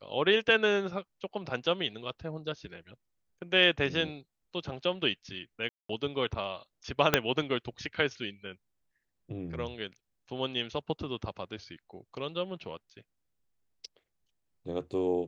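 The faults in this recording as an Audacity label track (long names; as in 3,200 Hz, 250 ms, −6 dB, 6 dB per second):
5.690000	5.890000	drop-out 204 ms
7.140000	7.140000	click −5 dBFS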